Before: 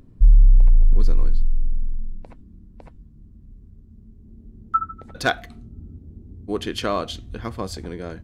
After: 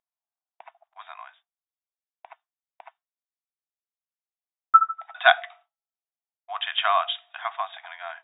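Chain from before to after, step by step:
linear-phase brick-wall band-pass 640–3,800 Hz
downward expander −54 dBFS
level +6 dB

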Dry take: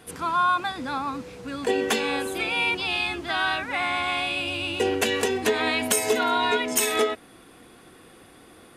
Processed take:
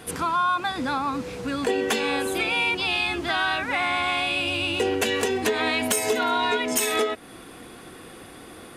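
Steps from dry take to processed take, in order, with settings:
downward compressor 2 to 1, threshold −32 dBFS, peak gain reduction 8 dB
soft clipping −18 dBFS, distortion −27 dB
level +7 dB

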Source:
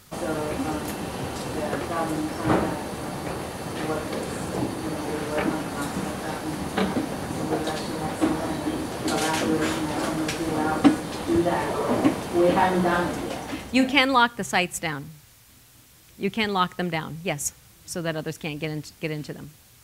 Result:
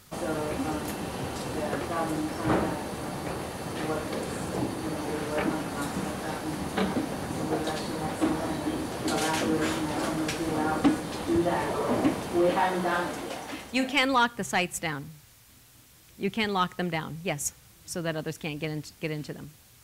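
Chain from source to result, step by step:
0:12.49–0:14.03: low-shelf EQ 290 Hz −8.5 dB
soft clipping −11.5 dBFS, distortion −18 dB
level −2.5 dB

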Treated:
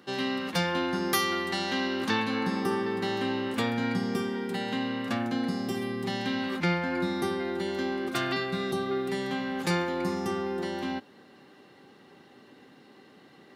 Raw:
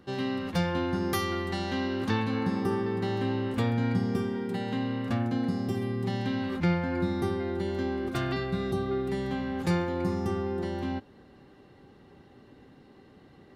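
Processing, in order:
Chebyshev high-pass filter 200 Hz, order 2
tilt shelving filter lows −4.5 dB, about 920 Hz
level +3.5 dB

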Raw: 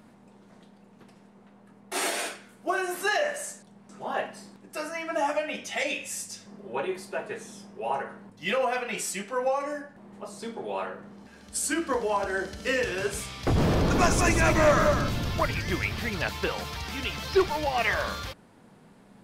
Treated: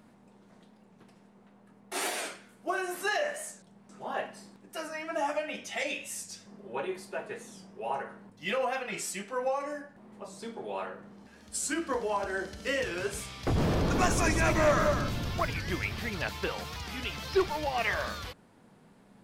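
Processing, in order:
wow of a warped record 45 rpm, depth 100 cents
level −4 dB

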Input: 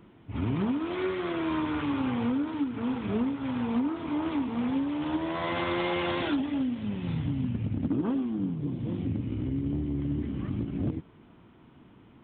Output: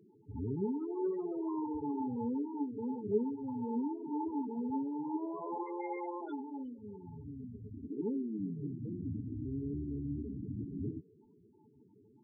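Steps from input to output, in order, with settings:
0:05.63–0:08.00: parametric band 150 Hz −10.5 dB 2.1 octaves
hollow resonant body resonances 420/870 Hz, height 13 dB, ringing for 70 ms
spectral peaks only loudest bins 8
level −8 dB

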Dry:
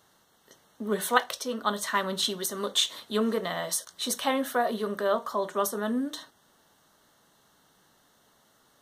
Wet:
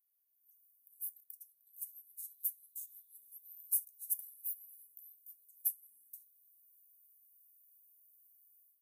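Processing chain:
automatic gain control gain up to 15 dB
inverse Chebyshev high-pass filter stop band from 3,000 Hz, stop band 80 dB
spring reverb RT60 2.9 s, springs 50 ms, DRR 2.5 dB
level −3.5 dB

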